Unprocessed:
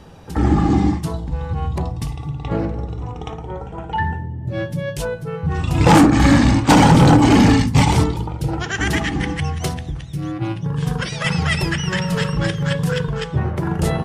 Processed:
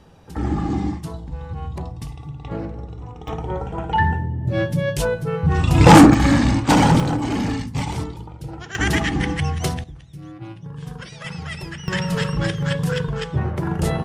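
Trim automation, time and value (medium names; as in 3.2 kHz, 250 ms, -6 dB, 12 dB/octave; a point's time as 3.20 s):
-7 dB
from 3.28 s +3 dB
from 6.14 s -3.5 dB
from 7.00 s -11 dB
from 8.75 s 0 dB
from 9.84 s -12 dB
from 11.88 s -2 dB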